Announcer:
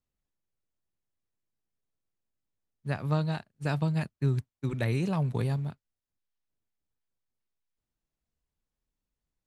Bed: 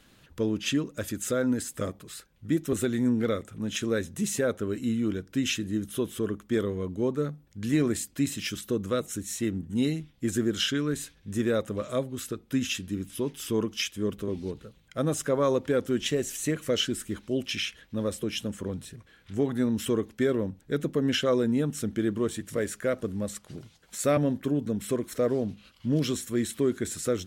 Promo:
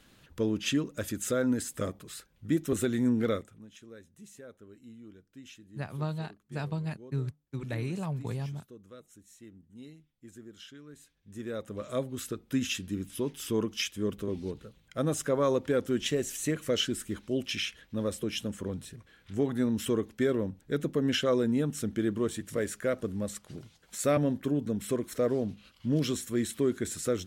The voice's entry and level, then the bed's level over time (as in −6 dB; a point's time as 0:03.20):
2.90 s, −5.5 dB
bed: 0:03.36 −1.5 dB
0:03.70 −22 dB
0:10.85 −22 dB
0:12.04 −2 dB